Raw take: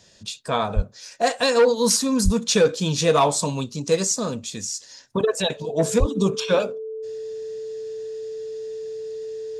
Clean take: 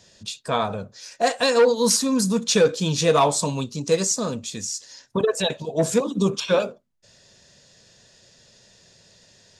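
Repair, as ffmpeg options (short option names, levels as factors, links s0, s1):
-filter_complex "[0:a]bandreject=f=440:w=30,asplit=3[s0][s1][s2];[s0]afade=t=out:st=0.75:d=0.02[s3];[s1]highpass=f=140:w=0.5412,highpass=f=140:w=1.3066,afade=t=in:st=0.75:d=0.02,afade=t=out:st=0.87:d=0.02[s4];[s2]afade=t=in:st=0.87:d=0.02[s5];[s3][s4][s5]amix=inputs=3:normalize=0,asplit=3[s6][s7][s8];[s6]afade=t=out:st=2.24:d=0.02[s9];[s7]highpass=f=140:w=0.5412,highpass=f=140:w=1.3066,afade=t=in:st=2.24:d=0.02,afade=t=out:st=2.36:d=0.02[s10];[s8]afade=t=in:st=2.36:d=0.02[s11];[s9][s10][s11]amix=inputs=3:normalize=0,asplit=3[s12][s13][s14];[s12]afade=t=out:st=5.99:d=0.02[s15];[s13]highpass=f=140:w=0.5412,highpass=f=140:w=1.3066,afade=t=in:st=5.99:d=0.02,afade=t=out:st=6.11:d=0.02[s16];[s14]afade=t=in:st=6.11:d=0.02[s17];[s15][s16][s17]amix=inputs=3:normalize=0"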